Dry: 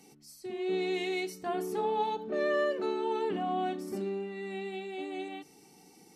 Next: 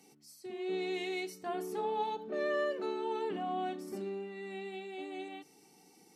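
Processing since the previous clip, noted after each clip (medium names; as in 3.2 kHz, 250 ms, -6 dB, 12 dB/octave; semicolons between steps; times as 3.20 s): high-pass 41 Hz; bass shelf 130 Hz -8 dB; trim -3.5 dB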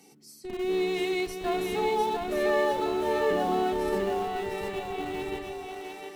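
in parallel at -10.5 dB: Schmitt trigger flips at -38.5 dBFS; on the sum: two-band feedback delay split 370 Hz, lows 144 ms, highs 702 ms, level -3.5 dB; trim +5.5 dB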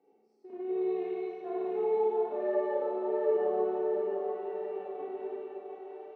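ladder band-pass 530 Hz, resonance 40%; Schroeder reverb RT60 1.4 s, combs from 25 ms, DRR -4.5 dB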